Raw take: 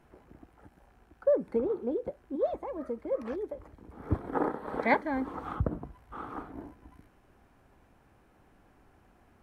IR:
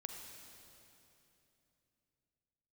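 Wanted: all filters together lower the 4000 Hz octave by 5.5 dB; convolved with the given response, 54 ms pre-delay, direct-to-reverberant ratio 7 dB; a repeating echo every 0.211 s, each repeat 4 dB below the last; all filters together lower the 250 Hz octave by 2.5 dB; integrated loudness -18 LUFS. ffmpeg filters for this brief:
-filter_complex "[0:a]equalizer=f=250:t=o:g=-3,equalizer=f=4k:t=o:g=-6.5,aecho=1:1:211|422|633|844|1055|1266|1477|1688|1899:0.631|0.398|0.25|0.158|0.0994|0.0626|0.0394|0.0249|0.0157,asplit=2[a][b];[1:a]atrim=start_sample=2205,adelay=54[c];[b][c]afir=irnorm=-1:irlink=0,volume=-4.5dB[d];[a][d]amix=inputs=2:normalize=0,volume=13dB"

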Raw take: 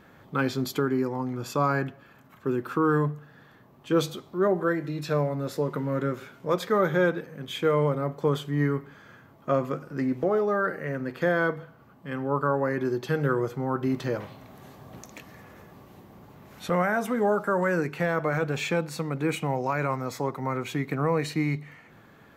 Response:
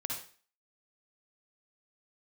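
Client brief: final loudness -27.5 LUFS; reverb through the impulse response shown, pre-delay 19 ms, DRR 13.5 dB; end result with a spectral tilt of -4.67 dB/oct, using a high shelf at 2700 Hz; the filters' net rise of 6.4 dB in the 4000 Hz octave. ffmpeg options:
-filter_complex "[0:a]highshelf=f=2.7k:g=3.5,equalizer=f=4k:t=o:g=5,asplit=2[a][b];[1:a]atrim=start_sample=2205,adelay=19[c];[b][c]afir=irnorm=-1:irlink=0,volume=-15dB[d];[a][d]amix=inputs=2:normalize=0,volume=-1dB"

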